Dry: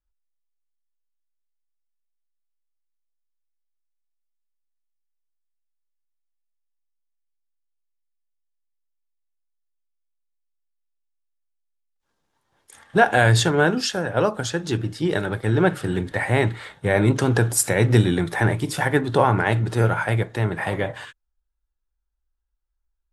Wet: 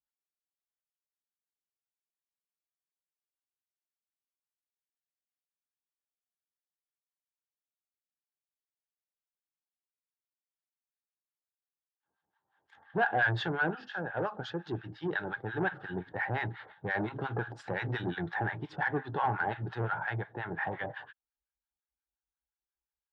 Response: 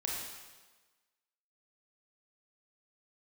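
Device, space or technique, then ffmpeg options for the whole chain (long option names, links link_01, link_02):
guitar amplifier with harmonic tremolo: -filter_complex "[0:a]acrossover=split=890[link_01][link_02];[link_01]aeval=exprs='val(0)*(1-1/2+1/2*cos(2*PI*5.7*n/s))':channel_layout=same[link_03];[link_02]aeval=exprs='val(0)*(1-1/2-1/2*cos(2*PI*5.7*n/s))':channel_layout=same[link_04];[link_03][link_04]amix=inputs=2:normalize=0,asoftclip=type=tanh:threshold=-17.5dB,highpass=91,equalizer=frequency=100:width_type=q:width=4:gain=-4,equalizer=frequency=240:width_type=q:width=4:gain=-5,equalizer=frequency=540:width_type=q:width=4:gain=-3,equalizer=frequency=810:width_type=q:width=4:gain=9,equalizer=frequency=1600:width_type=q:width=4:gain=8,equalizer=frequency=2300:width_type=q:width=4:gain=-5,lowpass=frequency=3500:width=0.5412,lowpass=frequency=3500:width=1.3066,volume=-7dB"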